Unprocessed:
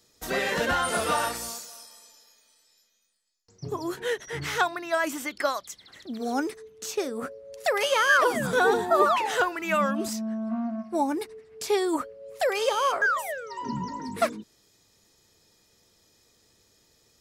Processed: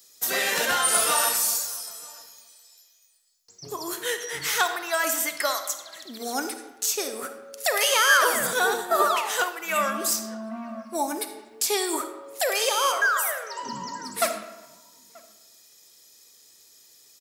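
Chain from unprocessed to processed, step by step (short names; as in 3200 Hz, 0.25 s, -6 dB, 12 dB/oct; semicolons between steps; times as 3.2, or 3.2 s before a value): RIAA curve recording; outdoor echo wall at 160 m, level -24 dB; digital reverb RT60 1.1 s, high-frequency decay 0.65×, pre-delay 10 ms, DRR 7.5 dB; 8.53–9.76 upward expander 1.5:1, over -29 dBFS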